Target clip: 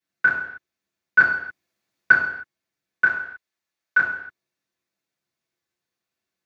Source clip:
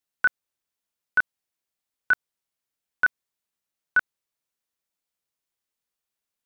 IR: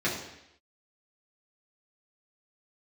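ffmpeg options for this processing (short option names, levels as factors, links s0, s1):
-filter_complex "[0:a]asettb=1/sr,asplit=3[s0][s1][s2];[s0]atrim=end=1.184[s3];[s1]atrim=start=1.18:end=2.12,asetpts=PTS-STARTPTS,afade=t=in:d=0.004:c=qsin,afade=t=out:st=0.936:d=0.004:c=qsin,acontrast=38[s4];[s2]atrim=start=2.116[s5];[s3][s4]acrossfade=d=0.004:c1=hsin:c2=qsin[s6];[s6][s5]acrossfade=d=0.004:c1=qsin:c2=hsin,asettb=1/sr,asplit=3[s7][s8][s9];[s7]atrim=end=3.044[s10];[s8]atrim=start=3.04:end=3.98,asetpts=PTS-STARTPTS,afade=t=in:d=0.004:c=qsin,afade=t=out:st=0.936:d=0.004:c=qsin,equalizer=f=170:t=o:w=1.9:g=-12[s11];[s9]atrim=start=3.976[s12];[s10][s11]acrossfade=d=0.004:c1=hsin:c2=qsin[s13];[s13][s12]acrossfade=d=0.004:c1=qsin:c2=hsin[s14];[1:a]atrim=start_sample=2205,afade=t=out:st=0.35:d=0.01,atrim=end_sample=15876[s15];[s14][s15]afir=irnorm=-1:irlink=0,volume=0.596"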